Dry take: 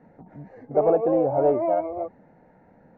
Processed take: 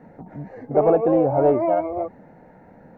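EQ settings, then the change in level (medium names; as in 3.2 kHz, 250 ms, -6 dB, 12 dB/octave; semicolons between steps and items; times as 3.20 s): dynamic bell 570 Hz, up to -5 dB, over -31 dBFS, Q 0.93; +7.0 dB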